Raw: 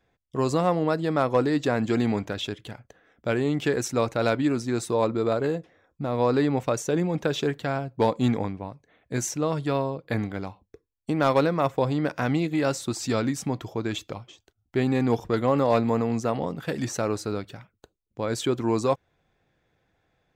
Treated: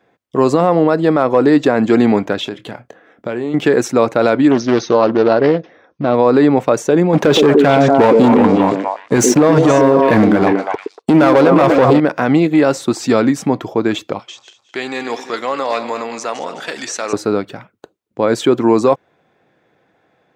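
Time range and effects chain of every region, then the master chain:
0:02.44–0:03.54: double-tracking delay 25 ms −13 dB + downward compressor 4 to 1, threshold −32 dBFS
0:04.51–0:06.15: linear-phase brick-wall low-pass 6,500 Hz + high-shelf EQ 3,000 Hz +7.5 dB + highs frequency-modulated by the lows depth 0.35 ms
0:07.13–0:12.00: leveller curve on the samples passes 3 + echo through a band-pass that steps 118 ms, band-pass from 330 Hz, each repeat 1.4 octaves, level −0.5 dB
0:14.19–0:17.13: feedback delay that plays each chunk backwards 105 ms, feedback 54%, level −12 dB + meter weighting curve ITU-R 468 + downward compressor 1.5 to 1, threshold −41 dBFS
whole clip: high-pass filter 210 Hz 12 dB per octave; high-shelf EQ 2,800 Hz −11 dB; boost into a limiter +16 dB; level −1 dB

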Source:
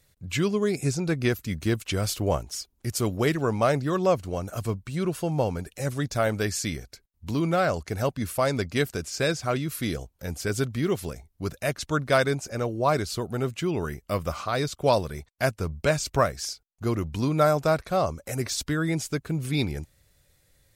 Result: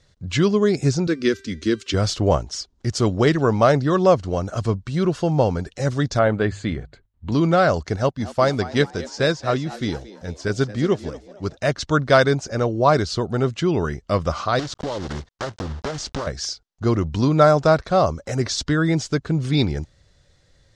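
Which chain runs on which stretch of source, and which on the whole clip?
0:01.07–0:01.94: high-pass filter 83 Hz + phaser with its sweep stopped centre 320 Hz, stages 4 + hum removal 392.4 Hz, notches 31
0:06.19–0:07.32: moving average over 8 samples + mains-hum notches 50/100/150 Hz
0:07.96–0:11.57: echo with shifted repeats 227 ms, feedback 46%, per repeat +100 Hz, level −12 dB + expander for the loud parts, over −42 dBFS
0:14.59–0:16.27: one scale factor per block 3 bits + downward compressor 16 to 1, threshold −29 dBFS + highs frequency-modulated by the lows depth 0.94 ms
whole clip: low-pass filter 6,300 Hz 24 dB per octave; parametric band 2,400 Hz −7 dB 0.38 octaves; level +7 dB

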